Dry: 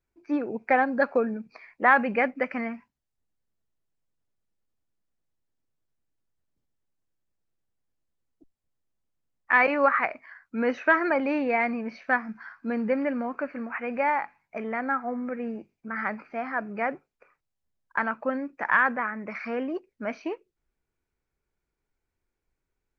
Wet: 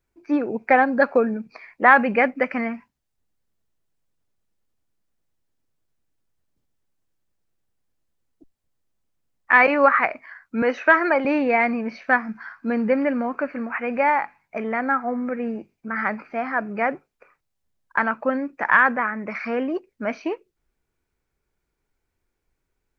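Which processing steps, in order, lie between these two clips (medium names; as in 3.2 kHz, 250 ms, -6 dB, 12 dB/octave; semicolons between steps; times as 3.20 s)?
10.62–11.25 s: high-pass 310 Hz 12 dB/octave; trim +5.5 dB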